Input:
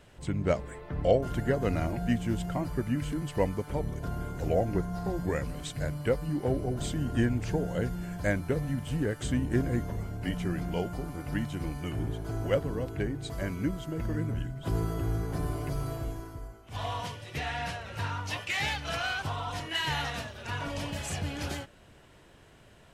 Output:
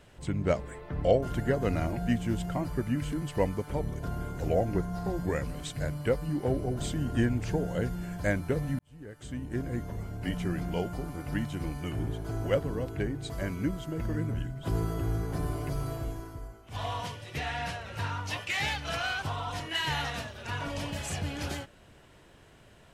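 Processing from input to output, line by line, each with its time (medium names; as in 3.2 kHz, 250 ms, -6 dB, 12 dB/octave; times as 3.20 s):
8.79–10.34 s: fade in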